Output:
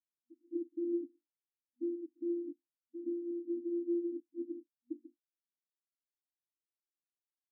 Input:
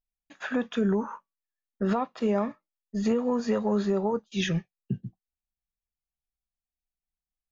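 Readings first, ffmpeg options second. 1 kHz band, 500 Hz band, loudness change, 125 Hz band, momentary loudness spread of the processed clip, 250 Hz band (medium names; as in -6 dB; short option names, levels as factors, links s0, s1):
under -40 dB, -11.5 dB, -11.0 dB, under -40 dB, 12 LU, -9.5 dB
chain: -af "afftfilt=real='hypot(re,im)*cos(PI*b)':imag='0':win_size=512:overlap=0.75,asuperstop=centerf=690:order=20:qfactor=0.59,afftfilt=real='re*between(b*sr/4096,240,970)':imag='im*between(b*sr/4096,240,970)':win_size=4096:overlap=0.75,volume=2.24"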